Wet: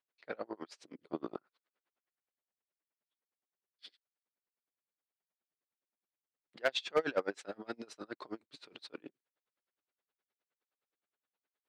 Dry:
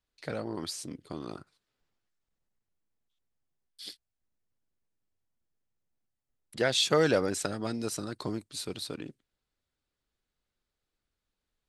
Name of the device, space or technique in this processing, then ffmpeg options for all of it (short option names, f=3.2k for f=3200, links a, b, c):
helicopter radio: -filter_complex "[0:a]asettb=1/sr,asplit=3[a][b][c];[a]atrim=end=0.954[d];[b]atrim=start=0.95:end=1.36,asetpts=PTS-STARTPTS,afade=t=in:d=0.004:c=qsin,afade=t=out:st=0.406:d=0.004:c=qsin,lowshelf=f=470:g=11.5[e];[c]atrim=start=1.356[f];[d][e]acrossfade=d=0.004:c1=hsin:c2=qsin[g];[g][f]acrossfade=d=0.004:c1=qsin:c2=hsin,highpass=390,lowpass=2.7k,aeval=exprs='val(0)*pow(10,-32*(0.5-0.5*cos(2*PI*9.6*n/s))/20)':c=same,asoftclip=type=hard:threshold=-24.5dB,volume=3dB"